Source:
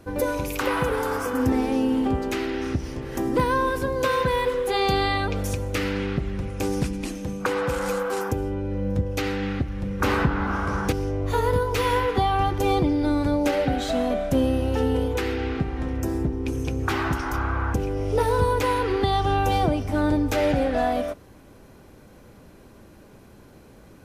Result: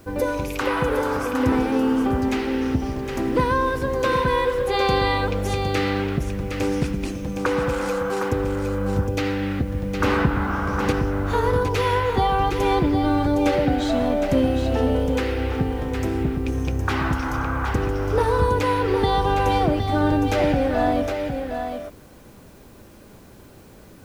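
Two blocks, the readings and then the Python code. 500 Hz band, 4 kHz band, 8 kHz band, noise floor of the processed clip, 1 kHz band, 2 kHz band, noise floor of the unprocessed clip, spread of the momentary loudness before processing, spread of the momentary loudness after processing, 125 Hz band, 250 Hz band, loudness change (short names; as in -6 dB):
+2.5 dB, +1.5 dB, -1.0 dB, -46 dBFS, +2.5 dB, +2.0 dB, -49 dBFS, 6 LU, 6 LU, +2.5 dB, +2.5 dB, +2.0 dB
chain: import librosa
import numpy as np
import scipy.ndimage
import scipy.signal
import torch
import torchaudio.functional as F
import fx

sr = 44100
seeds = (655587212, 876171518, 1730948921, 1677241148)

p1 = fx.high_shelf(x, sr, hz=10000.0, db=-11.5)
p2 = fx.quant_dither(p1, sr, seeds[0], bits=10, dither='triangular')
p3 = p2 + fx.echo_single(p2, sr, ms=762, db=-6.5, dry=0)
y = F.gain(torch.from_numpy(p3), 1.5).numpy()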